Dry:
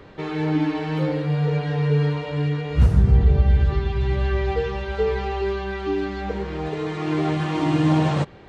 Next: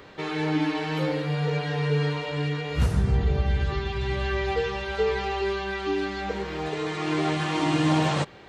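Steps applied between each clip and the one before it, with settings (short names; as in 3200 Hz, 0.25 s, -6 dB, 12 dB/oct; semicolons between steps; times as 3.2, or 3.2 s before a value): tilt +2 dB/oct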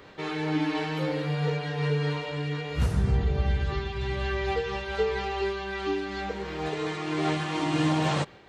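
noise-modulated level, depth 50%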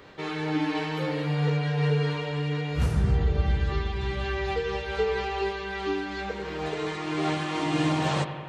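analogue delay 88 ms, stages 2048, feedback 77%, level -12 dB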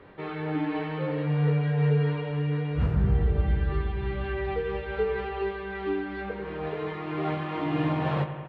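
air absorption 480 m; doubler 21 ms -10.5 dB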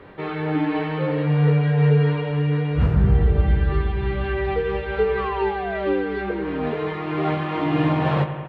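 painted sound fall, 5.17–6.73, 230–1200 Hz -36 dBFS; gain +6.5 dB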